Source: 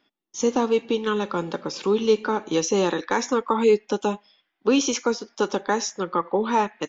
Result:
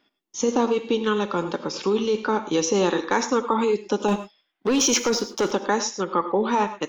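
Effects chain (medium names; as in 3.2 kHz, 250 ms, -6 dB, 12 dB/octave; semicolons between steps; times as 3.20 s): 4.08–5.51 s: waveshaping leveller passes 2; in parallel at +2 dB: compressor with a negative ratio -20 dBFS, ratio -0.5; on the sum: gated-style reverb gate 130 ms rising, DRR 11 dB; trim -7 dB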